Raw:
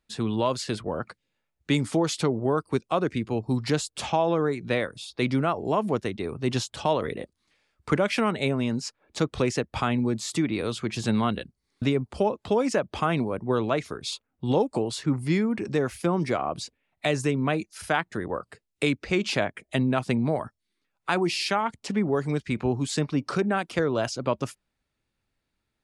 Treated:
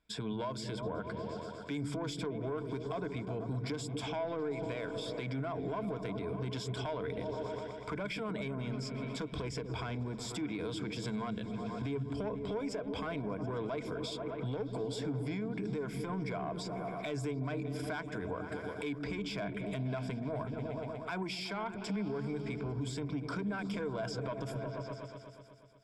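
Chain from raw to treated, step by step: soft clip -19 dBFS, distortion -14 dB; on a send: repeats that get brighter 0.121 s, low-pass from 200 Hz, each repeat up 1 oct, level -6 dB; on the sum: compressor 5:1, threshold -34 dBFS, peak gain reduction 12 dB; ripple EQ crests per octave 1.7, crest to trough 11 dB; limiter -29 dBFS, peak gain reduction 8.5 dB; high shelf 6500 Hz -9 dB

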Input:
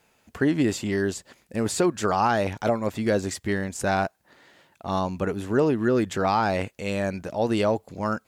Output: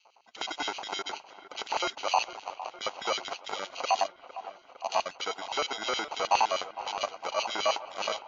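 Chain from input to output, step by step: random spectral dropouts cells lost 26%; 2.24–2.81 inverse Chebyshev band-stop 250–650 Hz, stop band 80 dB; in parallel at +0.5 dB: compressor 10:1, threshold -32 dBFS, peak gain reduction 15.5 dB; on the sum: sample-and-hold 25×; 3.91–4.96 fixed phaser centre 400 Hz, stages 6; hard clip -19 dBFS, distortion -11 dB; LFO high-pass square 9.6 Hz 770–3100 Hz; on a send: dark delay 0.457 s, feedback 68%, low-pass 2100 Hz, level -14 dB; on the sum: gain -3 dB; MP3 40 kbps 16000 Hz

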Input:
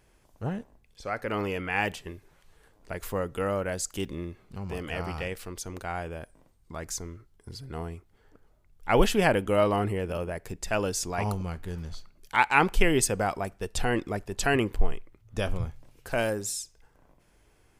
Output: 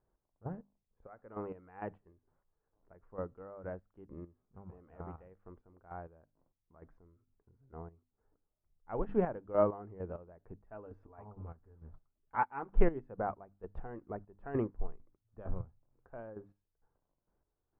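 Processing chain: LPF 1300 Hz 24 dB/oct; notches 50/100/150/200/250/300 Hz; chopper 2.2 Hz, depth 60%, duty 35%; 10.57–12.72 notch comb 180 Hz; upward expander 1.5:1, over -43 dBFS; gain -1.5 dB

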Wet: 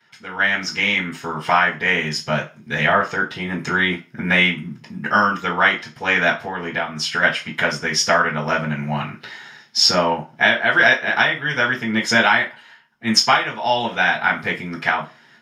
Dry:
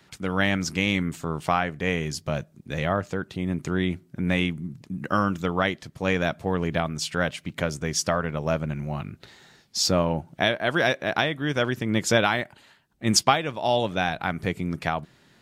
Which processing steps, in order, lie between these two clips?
6.29–7.22 compressor 5:1, threshold -27 dBFS, peak gain reduction 7.5 dB; passive tone stack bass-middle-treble 5-5-5; reverb RT60 0.30 s, pre-delay 3 ms, DRR -10.5 dB; AGC gain up to 13.5 dB; gain -1 dB

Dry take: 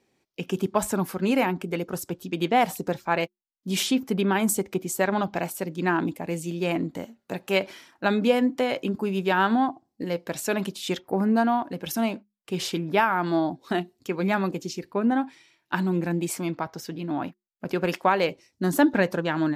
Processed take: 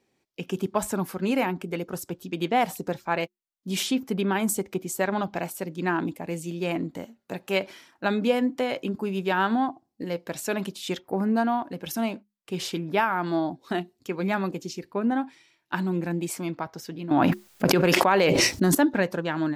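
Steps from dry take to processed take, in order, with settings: 17.11–18.75 fast leveller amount 100%; gain -2 dB

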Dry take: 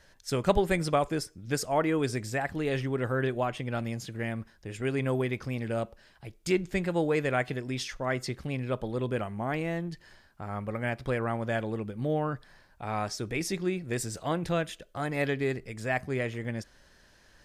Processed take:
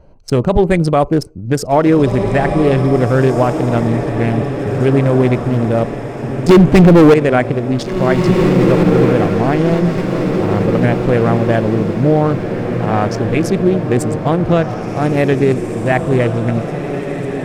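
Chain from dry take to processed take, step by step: Wiener smoothing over 25 samples; 6.49–7.14 sample leveller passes 5; tilt shelf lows +3.5 dB, about 1200 Hz; diffused feedback echo 1.856 s, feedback 55%, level -7.5 dB; maximiser +15.5 dB; gain -1 dB

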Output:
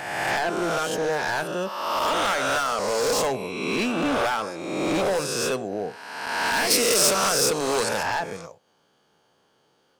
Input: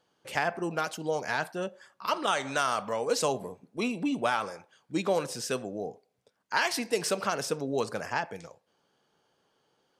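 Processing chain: spectral swells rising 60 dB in 1.42 s; hard clip -24 dBFS, distortion -9 dB; 6.7–8.03 high shelf 3500 Hz +10.5 dB; gain +4 dB

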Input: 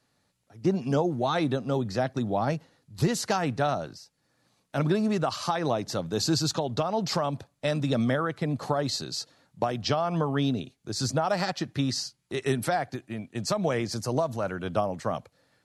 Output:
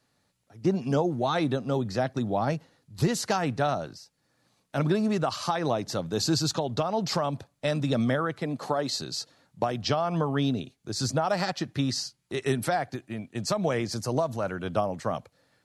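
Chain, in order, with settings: 8.41–8.96 HPF 190 Hz

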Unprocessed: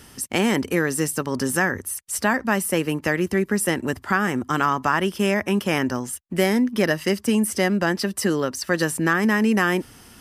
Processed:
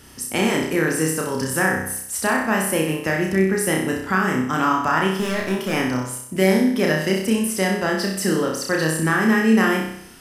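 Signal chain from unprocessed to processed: 5.1–5.73 overloaded stage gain 17.5 dB; on a send: flutter echo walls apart 5.4 m, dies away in 0.68 s; on the sum: gain -1.5 dB

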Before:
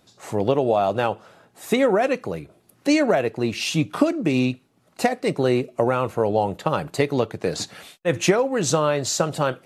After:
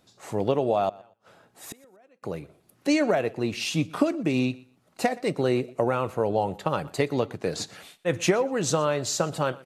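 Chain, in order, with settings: 0.89–2.23 flipped gate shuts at -22 dBFS, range -33 dB; feedback echo 0.121 s, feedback 20%, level -22 dB; gain -4 dB

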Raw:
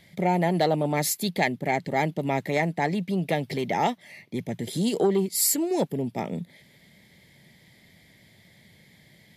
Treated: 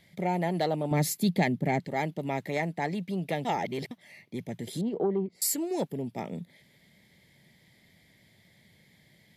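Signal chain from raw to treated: 0.91–1.8 bell 160 Hz +10 dB 2.3 oct; 3.45–3.91 reverse; 4.81–5.42 LPF 1200 Hz 12 dB/oct; gain -5.5 dB

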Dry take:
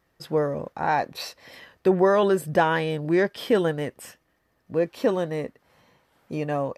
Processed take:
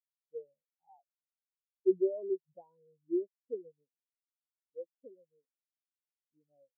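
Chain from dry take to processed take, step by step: bell 1400 Hz -8.5 dB 0.91 oct; spectral expander 4:1; gain -8.5 dB

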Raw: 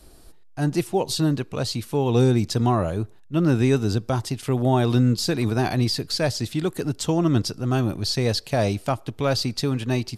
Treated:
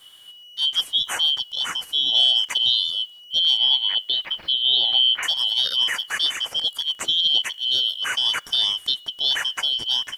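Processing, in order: four-band scrambler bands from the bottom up 3412; 3.57–5.23 steep low-pass 4300 Hz 48 dB/oct; bit-crush 10-bit

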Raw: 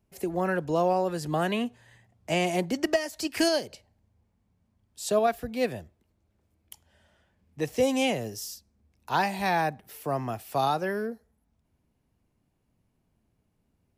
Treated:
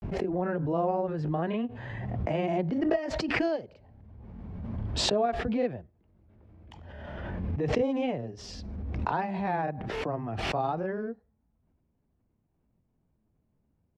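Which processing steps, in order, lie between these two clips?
tape spacing loss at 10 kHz 44 dB; grains 0.1 s, grains 20/s, spray 22 ms, pitch spread up and down by 0 st; backwards sustainer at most 24 dB/s

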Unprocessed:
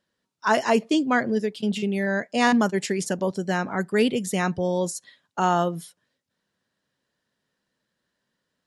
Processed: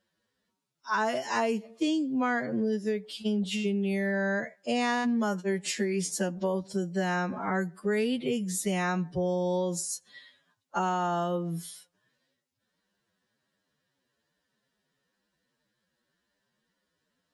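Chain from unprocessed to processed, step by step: time stretch by phase-locked vocoder 2×; compressor 6:1, threshold -25 dBFS, peak gain reduction 10 dB

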